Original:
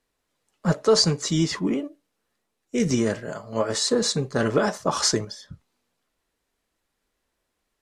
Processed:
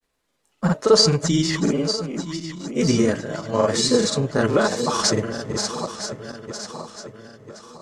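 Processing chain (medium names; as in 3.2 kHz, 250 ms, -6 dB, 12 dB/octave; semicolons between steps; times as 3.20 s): backward echo that repeats 486 ms, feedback 67%, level -9 dB; granulator, spray 37 ms, pitch spread up and down by 0 st; trim +4.5 dB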